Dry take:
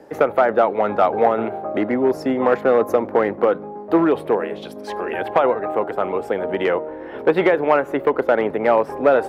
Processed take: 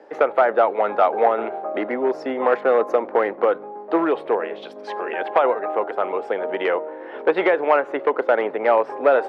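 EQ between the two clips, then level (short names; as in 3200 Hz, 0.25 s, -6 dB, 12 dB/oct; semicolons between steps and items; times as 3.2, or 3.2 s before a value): BPF 400–4100 Hz; 0.0 dB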